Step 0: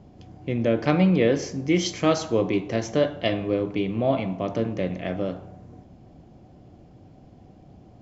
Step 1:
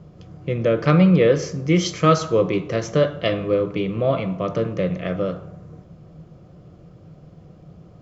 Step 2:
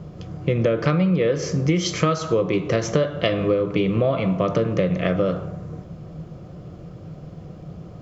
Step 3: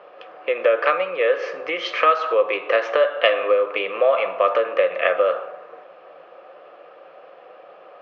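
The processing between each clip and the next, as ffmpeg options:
ffmpeg -i in.wav -af "equalizer=frequency=160:width_type=o:width=0.33:gain=11,equalizer=frequency=250:width_type=o:width=0.33:gain=-10,equalizer=frequency=500:width_type=o:width=0.33:gain=6,equalizer=frequency=800:width_type=o:width=0.33:gain=-8,equalizer=frequency=1250:width_type=o:width=0.33:gain=10,volume=2dB" out.wav
ffmpeg -i in.wav -af "acompressor=threshold=-23dB:ratio=12,volume=7dB" out.wav
ffmpeg -i in.wav -af "highpass=frequency=490:width=0.5412,highpass=frequency=490:width=1.3066,equalizer=frequency=540:width_type=q:width=4:gain=7,equalizer=frequency=800:width_type=q:width=4:gain=6,equalizer=frequency=1200:width_type=q:width=4:gain=8,equalizer=frequency=1700:width_type=q:width=4:gain=9,equalizer=frequency=2600:width_type=q:width=4:gain=9,lowpass=frequency=3600:width=0.5412,lowpass=frequency=3600:width=1.3066" out.wav

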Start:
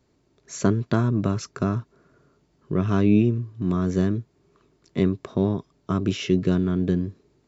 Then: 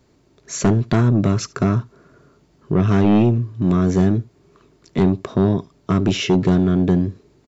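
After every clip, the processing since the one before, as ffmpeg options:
ffmpeg -i in.wav -filter_complex "[0:a]asplit=2[link_01][link_02];[link_02]aeval=exprs='0.501*sin(PI/2*3.16*val(0)/0.501)':channel_layout=same,volume=-10dB[link_03];[link_01][link_03]amix=inputs=2:normalize=0,aecho=1:1:74:0.0668" out.wav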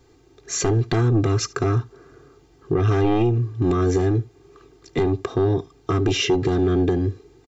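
ffmpeg -i in.wav -af "aecho=1:1:2.5:0.95,alimiter=limit=-11.5dB:level=0:latency=1:release=161" out.wav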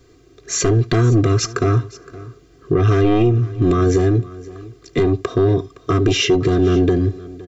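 ffmpeg -i in.wav -af "asuperstop=centerf=840:order=12:qfactor=4.9,aecho=1:1:516:0.106,volume=4.5dB" out.wav

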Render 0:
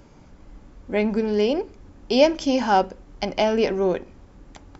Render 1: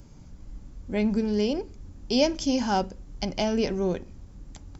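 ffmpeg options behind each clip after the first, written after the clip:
ffmpeg -i in.wav -af "bass=frequency=250:gain=12,treble=frequency=4000:gain=12,volume=-8dB" out.wav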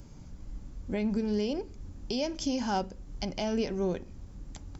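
ffmpeg -i in.wav -af "alimiter=limit=-20.5dB:level=0:latency=1:release=338" out.wav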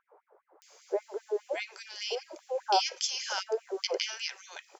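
ffmpeg -i in.wav -filter_complex "[0:a]acrossover=split=1200[link_01][link_02];[link_02]adelay=620[link_03];[link_01][link_03]amix=inputs=2:normalize=0,afftfilt=real='re*gte(b*sr/1024,340*pow(1900/340,0.5+0.5*sin(2*PI*5*pts/sr)))':imag='im*gte(b*sr/1024,340*pow(1900/340,0.5+0.5*sin(2*PI*5*pts/sr)))':win_size=1024:overlap=0.75,volume=7.5dB" out.wav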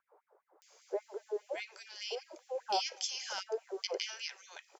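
ffmpeg -i in.wav -filter_complex "[0:a]acrossover=split=560|820|1900[link_01][link_02][link_03][link_04];[link_02]aecho=1:1:240|480:0.0794|0.0254[link_05];[link_03]asoftclip=type=hard:threshold=-39.5dB[link_06];[link_01][link_05][link_06][link_04]amix=inputs=4:normalize=0,volume=-5.5dB" out.wav

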